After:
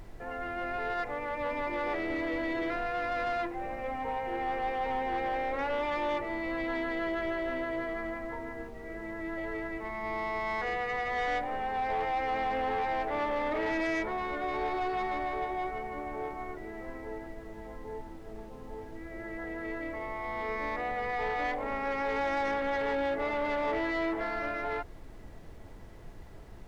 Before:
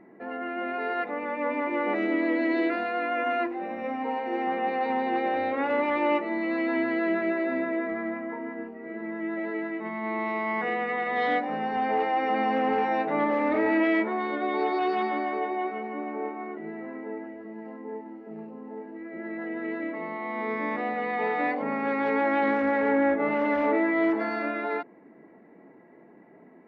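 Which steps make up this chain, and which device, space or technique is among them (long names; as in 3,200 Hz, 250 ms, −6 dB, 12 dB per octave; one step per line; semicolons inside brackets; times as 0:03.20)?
aircraft cabin announcement (band-pass filter 390–3,700 Hz; soft clipping −25 dBFS, distortion −14 dB; brown noise bed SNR 12 dB)
level −1.5 dB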